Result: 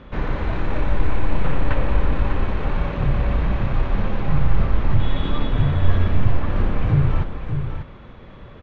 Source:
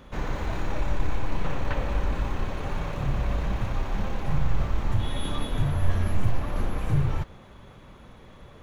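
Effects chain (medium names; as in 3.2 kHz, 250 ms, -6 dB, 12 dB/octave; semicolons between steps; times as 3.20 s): Bessel low-pass 2.9 kHz, order 4; peaking EQ 800 Hz -3 dB; on a send: delay 593 ms -7.5 dB; on the sum: trim +6.5 dB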